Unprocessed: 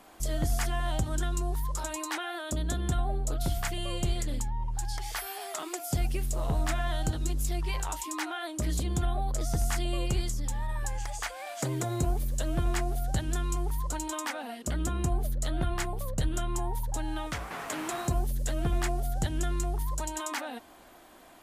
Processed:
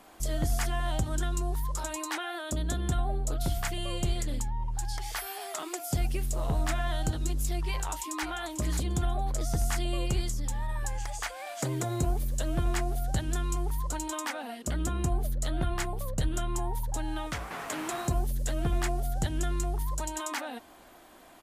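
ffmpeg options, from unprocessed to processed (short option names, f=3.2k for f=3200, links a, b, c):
-filter_complex "[0:a]asplit=2[a][b];[b]afade=t=in:st=7.68:d=0.01,afade=t=out:st=8.26:d=0.01,aecho=0:1:540|1080|1620:0.266073|0.0532145|0.0106429[c];[a][c]amix=inputs=2:normalize=0"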